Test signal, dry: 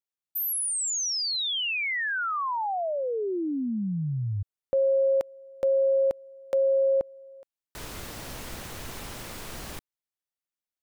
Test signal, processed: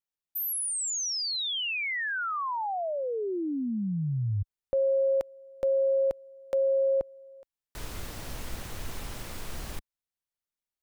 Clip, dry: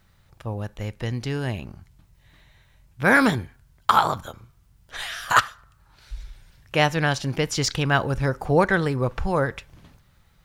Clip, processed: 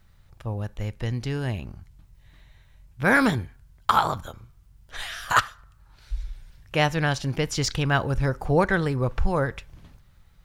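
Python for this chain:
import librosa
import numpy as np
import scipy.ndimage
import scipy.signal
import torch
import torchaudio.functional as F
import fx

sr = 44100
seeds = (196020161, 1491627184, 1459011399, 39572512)

y = fx.low_shelf(x, sr, hz=73.0, db=10.5)
y = y * librosa.db_to_amplitude(-2.5)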